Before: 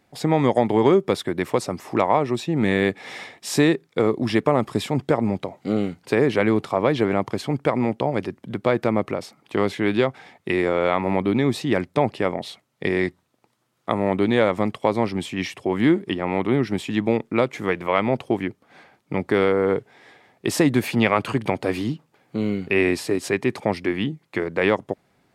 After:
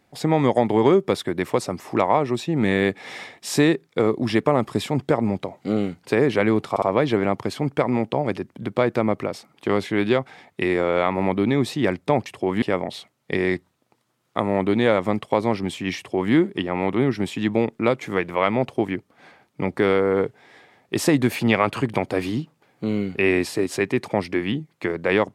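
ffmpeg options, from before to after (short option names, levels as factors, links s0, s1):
-filter_complex "[0:a]asplit=5[s0][s1][s2][s3][s4];[s0]atrim=end=6.762[s5];[s1]atrim=start=6.698:end=6.762[s6];[s2]atrim=start=6.698:end=12.142[s7];[s3]atrim=start=15.488:end=15.852[s8];[s4]atrim=start=12.138[s9];[s5][s6]acrossfade=d=0.004:c1=hsin:c2=hsin[s10];[s10][s7]acrossfade=d=0.004:c1=hsin:c2=hsin[s11];[s11][s8]acrossfade=d=0.004:c1=hsin:c2=hsin[s12];[s12][s9]acrossfade=d=0.004:c1=hsin:c2=hsin"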